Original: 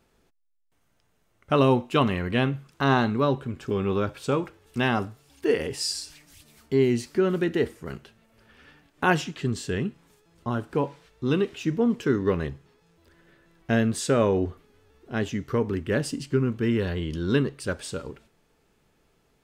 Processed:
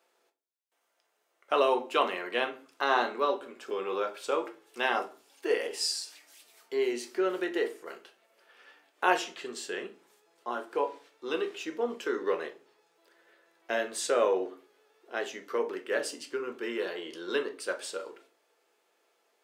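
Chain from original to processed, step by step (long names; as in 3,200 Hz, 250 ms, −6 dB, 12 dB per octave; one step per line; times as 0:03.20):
high-pass filter 410 Hz 24 dB per octave
convolution reverb RT60 0.40 s, pre-delay 6 ms, DRR 5 dB
level −3 dB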